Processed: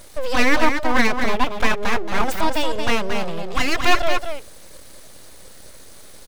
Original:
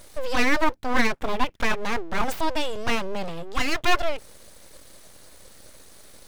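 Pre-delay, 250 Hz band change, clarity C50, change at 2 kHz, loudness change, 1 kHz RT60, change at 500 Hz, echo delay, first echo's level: none, +5.0 dB, none, +5.0 dB, +5.0 dB, none, +5.0 dB, 0.227 s, -6.5 dB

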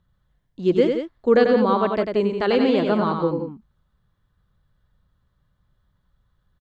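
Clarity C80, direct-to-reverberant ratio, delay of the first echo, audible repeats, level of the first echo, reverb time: none, none, 94 ms, 2, -5.5 dB, none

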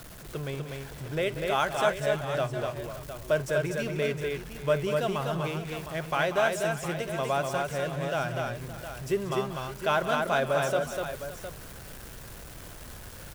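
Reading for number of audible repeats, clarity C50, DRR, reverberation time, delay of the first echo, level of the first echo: 5, none, none, none, 52 ms, -20.0 dB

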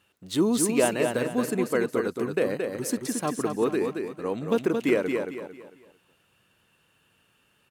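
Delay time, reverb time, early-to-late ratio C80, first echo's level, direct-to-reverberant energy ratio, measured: 0.224 s, none, none, -5.0 dB, none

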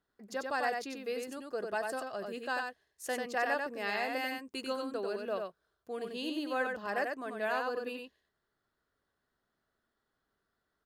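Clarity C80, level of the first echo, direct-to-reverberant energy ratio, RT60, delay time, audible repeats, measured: none, -4.0 dB, none, none, 93 ms, 1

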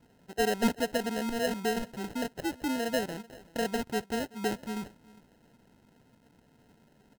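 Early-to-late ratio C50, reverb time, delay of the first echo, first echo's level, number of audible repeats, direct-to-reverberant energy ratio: none, none, 0.38 s, -22.0 dB, 1, none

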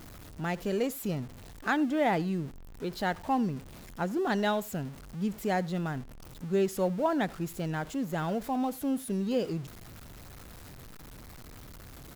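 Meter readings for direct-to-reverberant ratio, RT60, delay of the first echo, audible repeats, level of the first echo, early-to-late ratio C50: none, none, 87 ms, 1, -24.0 dB, none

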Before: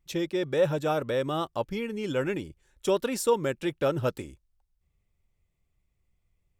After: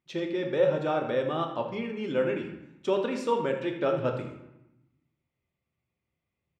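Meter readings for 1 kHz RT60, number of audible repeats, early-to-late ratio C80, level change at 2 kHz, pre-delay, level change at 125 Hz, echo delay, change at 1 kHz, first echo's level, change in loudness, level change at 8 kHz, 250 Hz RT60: 0.95 s, 1, 8.0 dB, -0.5 dB, 3 ms, -3.0 dB, 81 ms, +0.5 dB, -12.0 dB, -0.5 dB, under -10 dB, 1.3 s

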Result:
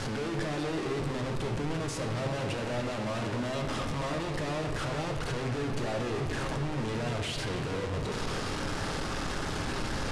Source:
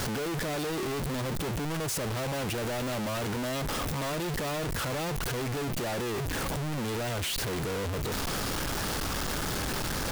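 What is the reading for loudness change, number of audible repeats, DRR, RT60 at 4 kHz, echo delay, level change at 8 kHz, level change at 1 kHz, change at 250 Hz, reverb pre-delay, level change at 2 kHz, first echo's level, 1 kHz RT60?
-1.5 dB, none, 2.0 dB, 1.5 s, none, -7.5 dB, -1.0 dB, -0.5 dB, 7 ms, -1.5 dB, none, 2.5 s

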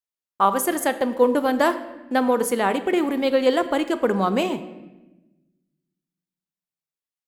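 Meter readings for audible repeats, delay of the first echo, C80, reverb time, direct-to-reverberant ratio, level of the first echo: none, none, 14.0 dB, 1.0 s, 10.5 dB, none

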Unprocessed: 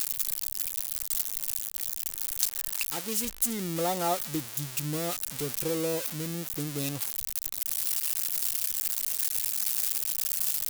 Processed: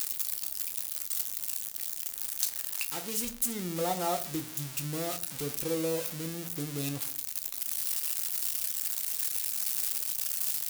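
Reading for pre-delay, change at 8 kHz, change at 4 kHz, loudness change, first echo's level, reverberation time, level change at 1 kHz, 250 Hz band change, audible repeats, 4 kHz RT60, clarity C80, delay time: 8 ms, -2.5 dB, -2.5 dB, -2.5 dB, none, 0.45 s, -2.0 dB, -2.0 dB, none, 0.35 s, 20.0 dB, none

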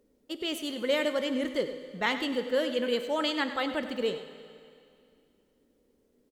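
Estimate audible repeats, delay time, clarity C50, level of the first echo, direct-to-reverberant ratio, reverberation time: 1, 98 ms, 9.0 dB, -13.0 dB, 8.0 dB, 2.4 s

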